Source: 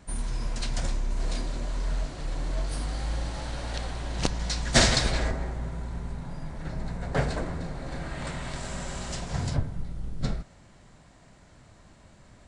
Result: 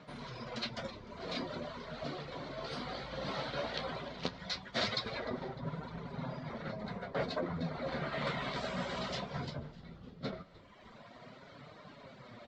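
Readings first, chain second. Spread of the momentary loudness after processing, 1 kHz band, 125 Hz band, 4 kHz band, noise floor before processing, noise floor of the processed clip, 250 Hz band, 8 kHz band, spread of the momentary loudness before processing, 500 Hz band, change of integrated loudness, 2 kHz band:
17 LU, -4.5 dB, -12.0 dB, -8.0 dB, -55 dBFS, -56 dBFS, -6.5 dB, -22.5 dB, 11 LU, -3.5 dB, -8.5 dB, -7.5 dB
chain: reverb removal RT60 1.3 s; reverse; compressor 8:1, threshold -37 dBFS, peak gain reduction 22 dB; reverse; flange 0.17 Hz, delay 6.4 ms, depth 9.7 ms, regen +46%; speaker cabinet 230–4000 Hz, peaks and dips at 320 Hz -9 dB, 830 Hz -7 dB, 1700 Hz -6 dB, 2700 Hz -6 dB; frequency-shifting echo 0.302 s, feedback 53%, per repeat -100 Hz, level -20 dB; gain +15 dB

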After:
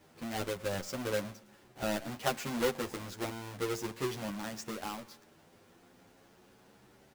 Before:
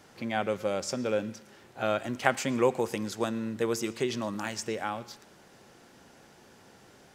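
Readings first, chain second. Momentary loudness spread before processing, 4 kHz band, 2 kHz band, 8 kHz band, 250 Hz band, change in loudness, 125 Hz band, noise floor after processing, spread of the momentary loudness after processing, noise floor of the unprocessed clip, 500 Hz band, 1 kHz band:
12 LU, -2.5 dB, -6.0 dB, -4.0 dB, -6.0 dB, -6.0 dB, -3.5 dB, -62 dBFS, 8 LU, -57 dBFS, -6.5 dB, -6.5 dB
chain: half-waves squared off; endless flanger 9.9 ms +0.39 Hz; gain -7.5 dB

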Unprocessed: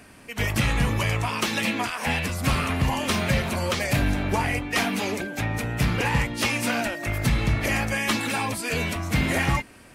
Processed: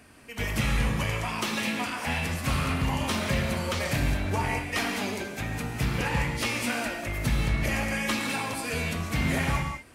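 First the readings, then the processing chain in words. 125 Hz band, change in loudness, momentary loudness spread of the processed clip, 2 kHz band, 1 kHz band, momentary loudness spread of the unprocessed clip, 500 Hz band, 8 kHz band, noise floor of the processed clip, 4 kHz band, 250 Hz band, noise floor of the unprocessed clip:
-3.5 dB, -3.5 dB, 4 LU, -4.0 dB, -4.0 dB, 4 LU, -4.0 dB, -3.5 dB, -42 dBFS, -3.5 dB, -3.5 dB, -48 dBFS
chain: non-linear reverb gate 0.23 s flat, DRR 3 dB; gain -5.5 dB

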